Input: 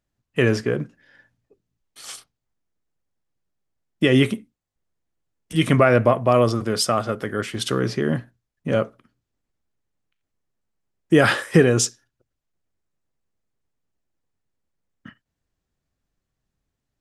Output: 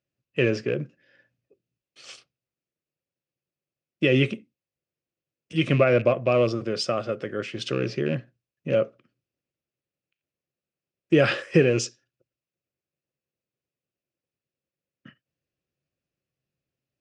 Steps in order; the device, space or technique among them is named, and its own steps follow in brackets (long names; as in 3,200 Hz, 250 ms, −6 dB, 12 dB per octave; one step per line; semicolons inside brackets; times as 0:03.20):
car door speaker with a rattle (loose part that buzzes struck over −20 dBFS, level −23 dBFS; loudspeaker in its box 91–6,700 Hz, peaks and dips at 140 Hz +7 dB, 350 Hz +6 dB, 540 Hz +9 dB, 910 Hz −7 dB, 2,600 Hz +10 dB, 5,000 Hz +3 dB)
0:11.42–0:11.85: notch filter 3,700 Hz, Q 8.3
level −8 dB